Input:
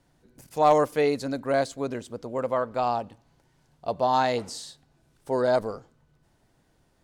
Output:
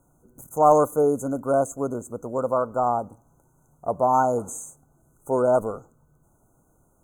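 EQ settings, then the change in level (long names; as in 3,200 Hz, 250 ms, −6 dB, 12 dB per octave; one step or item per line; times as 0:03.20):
linear-phase brick-wall band-stop 1,500–6,100 Hz
high-shelf EQ 9,500 Hz +10.5 dB
+3.0 dB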